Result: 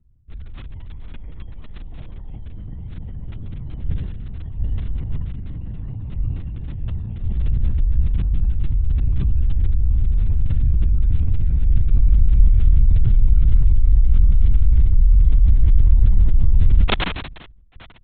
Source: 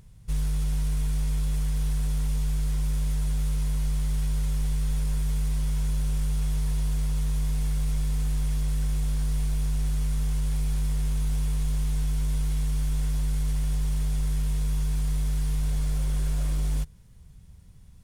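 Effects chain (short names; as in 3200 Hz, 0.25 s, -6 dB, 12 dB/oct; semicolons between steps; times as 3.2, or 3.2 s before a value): gliding pitch shift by -9.5 st starting unshifted; spectral noise reduction 19 dB; tilt -4 dB/oct; crackle 14/s -18 dBFS; LPC vocoder at 8 kHz whisper; sustainer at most 49 dB/s; gain -6 dB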